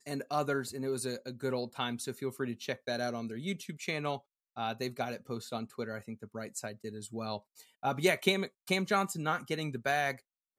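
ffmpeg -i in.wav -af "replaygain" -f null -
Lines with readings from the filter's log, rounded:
track_gain = +14.4 dB
track_peak = 0.167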